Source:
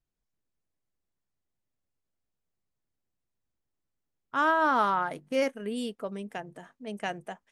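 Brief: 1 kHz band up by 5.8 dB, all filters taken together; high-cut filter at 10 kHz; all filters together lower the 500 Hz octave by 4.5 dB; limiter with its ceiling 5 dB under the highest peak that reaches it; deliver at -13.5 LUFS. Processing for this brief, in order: low-pass 10 kHz; peaking EQ 500 Hz -9 dB; peaking EQ 1 kHz +9 dB; trim +13.5 dB; peak limiter -1 dBFS

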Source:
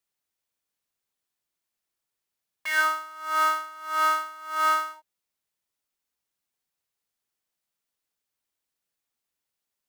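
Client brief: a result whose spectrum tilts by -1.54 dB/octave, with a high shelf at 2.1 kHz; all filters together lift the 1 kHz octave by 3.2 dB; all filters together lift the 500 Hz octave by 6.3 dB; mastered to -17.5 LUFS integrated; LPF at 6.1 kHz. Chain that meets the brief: low-pass 6.1 kHz; peaking EQ 500 Hz +7 dB; peaking EQ 1 kHz +5 dB; treble shelf 2.1 kHz -5 dB; trim +5.5 dB

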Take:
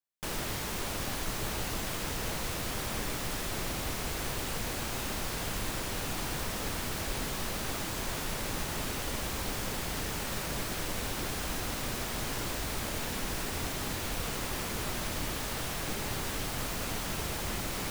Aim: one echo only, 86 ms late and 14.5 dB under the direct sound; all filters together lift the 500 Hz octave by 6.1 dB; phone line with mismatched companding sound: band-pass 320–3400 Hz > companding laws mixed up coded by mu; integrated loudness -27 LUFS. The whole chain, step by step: band-pass 320–3400 Hz; peaking EQ 500 Hz +8.5 dB; delay 86 ms -14.5 dB; companding laws mixed up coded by mu; trim +7 dB

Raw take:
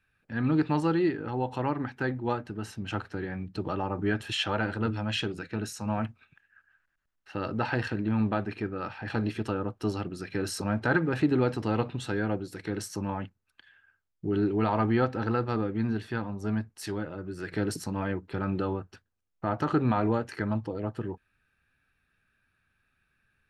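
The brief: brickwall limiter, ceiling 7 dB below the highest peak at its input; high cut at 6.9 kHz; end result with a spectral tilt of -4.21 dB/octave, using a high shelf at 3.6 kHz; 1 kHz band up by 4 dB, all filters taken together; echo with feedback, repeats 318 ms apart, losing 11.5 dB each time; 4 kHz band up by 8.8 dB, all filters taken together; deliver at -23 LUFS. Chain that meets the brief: low-pass 6.9 kHz; peaking EQ 1 kHz +4 dB; treble shelf 3.6 kHz +8.5 dB; peaking EQ 4 kHz +6.5 dB; peak limiter -15.5 dBFS; feedback delay 318 ms, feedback 27%, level -11.5 dB; trim +6.5 dB

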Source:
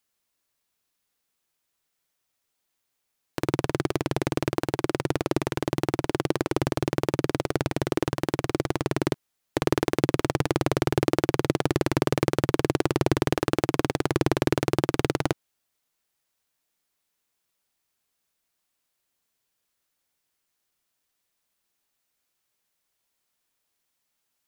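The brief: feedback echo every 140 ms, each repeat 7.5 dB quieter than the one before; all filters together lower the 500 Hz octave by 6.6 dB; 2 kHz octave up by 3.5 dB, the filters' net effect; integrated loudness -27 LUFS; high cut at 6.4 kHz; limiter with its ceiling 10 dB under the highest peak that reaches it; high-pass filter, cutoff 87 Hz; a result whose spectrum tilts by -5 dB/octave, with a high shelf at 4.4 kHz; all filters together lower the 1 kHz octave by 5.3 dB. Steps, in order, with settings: high-pass 87 Hz; low-pass 6.4 kHz; peaking EQ 500 Hz -8.5 dB; peaking EQ 1 kHz -6 dB; peaking EQ 2 kHz +5.5 dB; treble shelf 4.4 kHz +6 dB; peak limiter -13.5 dBFS; feedback delay 140 ms, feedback 42%, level -7.5 dB; trim +8 dB

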